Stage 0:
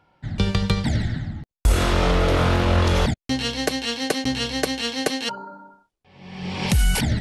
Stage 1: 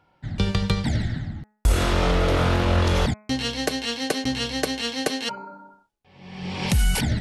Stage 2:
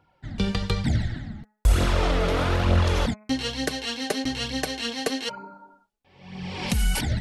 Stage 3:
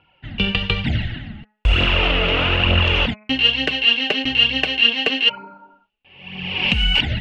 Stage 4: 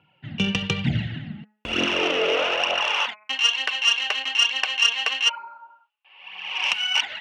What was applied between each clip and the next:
hum removal 212.1 Hz, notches 12; level −1.5 dB
flanger 1.1 Hz, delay 0.1 ms, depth 5.1 ms, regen +32%; level +1.5 dB
low-pass with resonance 2,800 Hz, resonance Q 11; level +2 dB
stylus tracing distortion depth 0.047 ms; high-pass filter sweep 140 Hz → 1,000 Hz, 0:01.21–0:03.06; level −5 dB

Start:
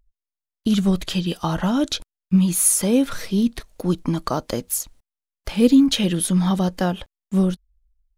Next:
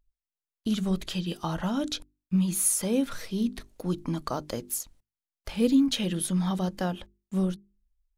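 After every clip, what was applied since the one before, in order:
mains-hum notches 50/100/150/200/250/300/350/400 Hz
level −7.5 dB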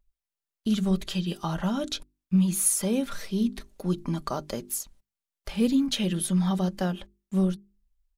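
comb filter 5.1 ms, depth 39%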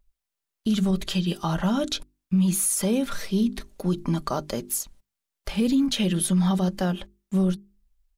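brickwall limiter −19.5 dBFS, peak gain reduction 8 dB
level +4.5 dB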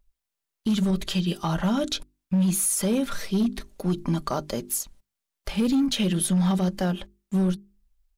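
hard clipping −17.5 dBFS, distortion −22 dB

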